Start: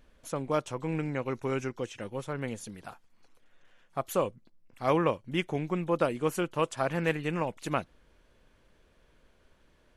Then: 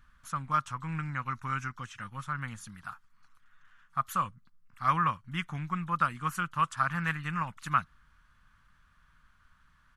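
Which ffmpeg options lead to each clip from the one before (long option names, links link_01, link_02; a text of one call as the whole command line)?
ffmpeg -i in.wav -af "firequalizer=gain_entry='entry(160,0);entry(410,-26);entry(1200,10);entry(2300,-3)':delay=0.05:min_phase=1" out.wav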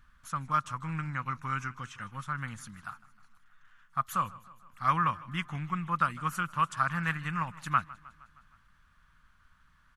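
ffmpeg -i in.wav -af "aecho=1:1:156|312|468|624|780:0.0944|0.0557|0.0329|0.0194|0.0114" out.wav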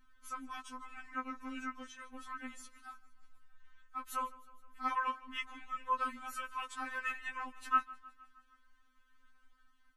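ffmpeg -i in.wav -af "afftfilt=real='re*3.46*eq(mod(b,12),0)':imag='im*3.46*eq(mod(b,12),0)':win_size=2048:overlap=0.75,volume=-3dB" out.wav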